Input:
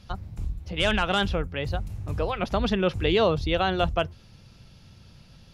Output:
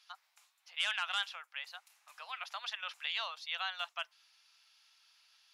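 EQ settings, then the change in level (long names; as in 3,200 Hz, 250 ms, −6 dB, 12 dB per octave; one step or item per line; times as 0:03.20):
Bessel high-pass filter 1,500 Hz, order 8
−6.0 dB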